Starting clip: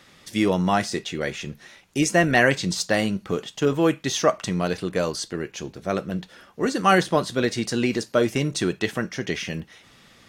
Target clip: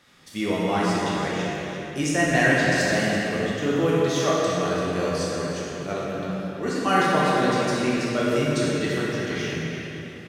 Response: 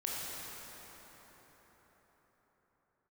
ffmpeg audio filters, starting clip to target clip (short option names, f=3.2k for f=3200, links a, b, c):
-filter_complex "[0:a]asplit=2[a][b];[b]adelay=338.2,volume=-7dB,highshelf=f=4k:g=-7.61[c];[a][c]amix=inputs=2:normalize=0[d];[1:a]atrim=start_sample=2205,asetrate=74970,aresample=44100[e];[d][e]afir=irnorm=-1:irlink=0"